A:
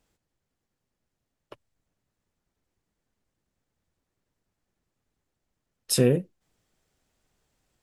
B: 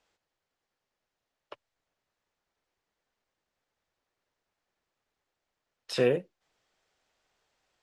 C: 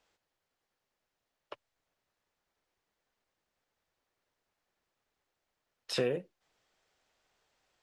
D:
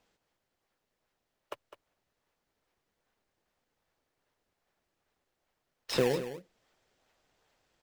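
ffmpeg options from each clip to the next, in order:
ffmpeg -i in.wav -filter_complex "[0:a]acrossover=split=3600[link_01][link_02];[link_02]acompressor=threshold=-37dB:ratio=4:attack=1:release=60[link_03];[link_01][link_03]amix=inputs=2:normalize=0,acrossover=split=440 6400:gain=0.178 1 0.141[link_04][link_05][link_06];[link_04][link_05][link_06]amix=inputs=3:normalize=0,volume=2.5dB" out.wav
ffmpeg -i in.wav -af "acompressor=threshold=-27dB:ratio=6" out.wav
ffmpeg -i in.wav -filter_complex "[0:a]asplit=2[link_01][link_02];[link_02]acrusher=samples=20:mix=1:aa=0.000001:lfo=1:lforange=32:lforate=2.5,volume=-4dB[link_03];[link_01][link_03]amix=inputs=2:normalize=0,aecho=1:1:205:0.251" out.wav

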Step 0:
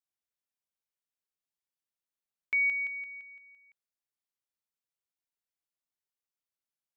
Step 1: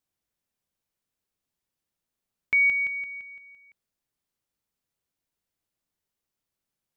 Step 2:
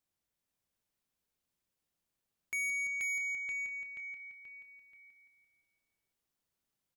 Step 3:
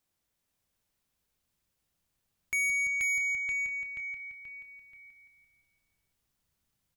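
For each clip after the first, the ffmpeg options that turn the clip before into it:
ffmpeg -i in.wav -af "lowshelf=frequency=430:gain=10.5,volume=6dB" out.wav
ffmpeg -i in.wav -filter_complex "[0:a]asplit=2[link_01][link_02];[link_02]aecho=0:1:481|962|1443|1924|2405:0.596|0.238|0.0953|0.0381|0.0152[link_03];[link_01][link_03]amix=inputs=2:normalize=0,asoftclip=type=tanh:threshold=-31dB,volume=-2.5dB" out.wav
ffmpeg -i in.wav -af "asubboost=boost=3:cutoff=180,volume=6dB" out.wav

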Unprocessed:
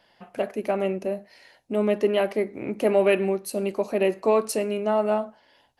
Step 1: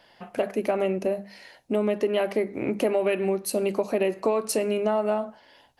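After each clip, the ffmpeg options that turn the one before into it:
ffmpeg -i in.wav -af "bandreject=frequency=50:width_type=h:width=6,bandreject=frequency=100:width_type=h:width=6,bandreject=frequency=150:width_type=h:width=6,bandreject=frequency=200:width_type=h:width=6,acompressor=threshold=-25dB:ratio=6,volume=4.5dB" out.wav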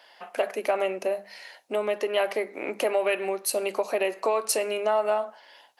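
ffmpeg -i in.wav -af "highpass=600,volume=3.5dB" out.wav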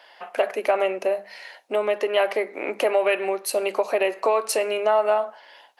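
ffmpeg -i in.wav -af "bass=frequency=250:gain=-8,treble=frequency=4000:gain=-6,volume=4.5dB" out.wav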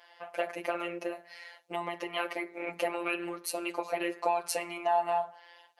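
ffmpeg -i in.wav -af "afftfilt=real='hypot(re,im)*cos(PI*b)':imag='0':win_size=1024:overlap=0.75,flanger=delay=3:depth=2.8:regen=-55:speed=0.82:shape=sinusoidal" out.wav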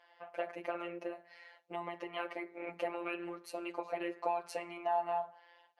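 ffmpeg -i in.wav -af "aemphasis=mode=reproduction:type=75kf,volume=-5dB" out.wav

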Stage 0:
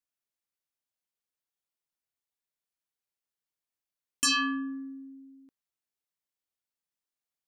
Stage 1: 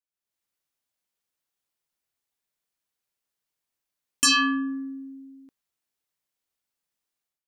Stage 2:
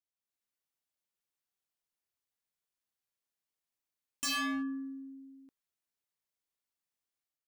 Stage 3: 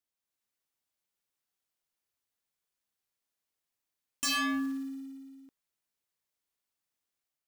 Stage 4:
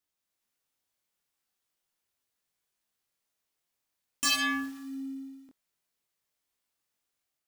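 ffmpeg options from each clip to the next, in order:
ffmpeg -i in.wav -af "dynaudnorm=framelen=110:gausssize=5:maxgain=12dB,volume=-6dB" out.wav
ffmpeg -i in.wav -af "volume=25dB,asoftclip=hard,volume=-25dB,volume=-7dB" out.wav
ffmpeg -i in.wav -af "acrusher=bits=6:mode=log:mix=0:aa=0.000001,volume=3dB" out.wav
ffmpeg -i in.wav -af "flanger=delay=20:depth=4:speed=0.44,volume=7dB" out.wav

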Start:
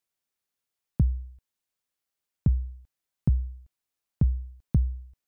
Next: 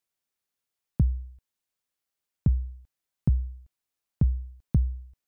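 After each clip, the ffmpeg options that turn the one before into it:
ffmpeg -i in.wav -af anull out.wav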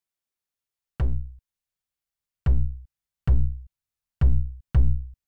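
ffmpeg -i in.wav -af "aeval=exprs='0.224*(cos(1*acos(clip(val(0)/0.224,-1,1)))-cos(1*PI/2))+0.0501*(cos(5*acos(clip(val(0)/0.224,-1,1)))-cos(5*PI/2))+0.0447*(cos(7*acos(clip(val(0)/0.224,-1,1)))-cos(7*PI/2))+0.0562*(cos(8*acos(clip(val(0)/0.224,-1,1)))-cos(8*PI/2))':channel_layout=same,volume=23.5dB,asoftclip=hard,volume=-23.5dB,asubboost=boost=5.5:cutoff=150,volume=-1.5dB" out.wav

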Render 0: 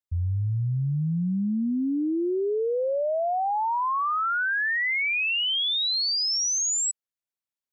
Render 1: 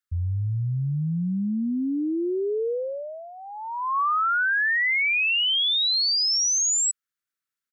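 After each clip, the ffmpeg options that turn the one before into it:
ffmpeg -i in.wav -af "firequalizer=gain_entry='entry(470,0);entry(720,-17);entry(1300,12);entry(2500,3)':delay=0.05:min_phase=1,alimiter=limit=-19.5dB:level=0:latency=1" out.wav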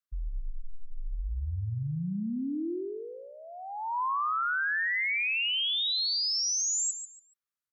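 ffmpeg -i in.wav -af "afreqshift=-130,aecho=1:1:142|284|426:0.316|0.0759|0.0182,volume=-7dB" out.wav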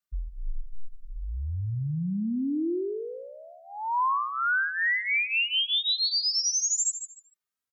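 ffmpeg -i in.wav -filter_complex "[0:a]asplit=2[link_01][link_02];[link_02]adelay=2.9,afreqshift=1.1[link_03];[link_01][link_03]amix=inputs=2:normalize=1,volume=5.5dB" out.wav

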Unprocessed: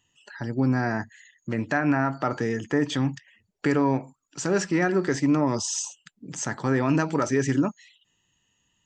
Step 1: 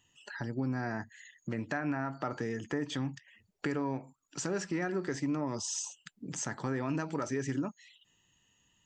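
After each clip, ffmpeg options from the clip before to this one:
ffmpeg -i in.wav -af "acompressor=threshold=-39dB:ratio=2" out.wav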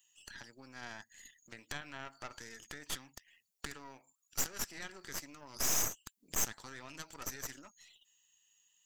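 ffmpeg -i in.wav -af "aderivative,aeval=exprs='0.0501*(cos(1*acos(clip(val(0)/0.0501,-1,1)))-cos(1*PI/2))+0.0141*(cos(8*acos(clip(val(0)/0.0501,-1,1)))-cos(8*PI/2))':channel_layout=same,volume=4dB" out.wav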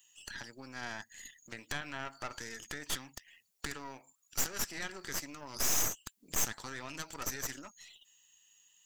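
ffmpeg -i in.wav -af "asoftclip=type=tanh:threshold=-28dB,volume=6dB" out.wav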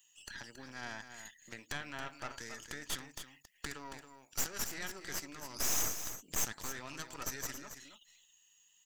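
ffmpeg -i in.wav -af "aecho=1:1:275:0.335,volume=-2.5dB" out.wav

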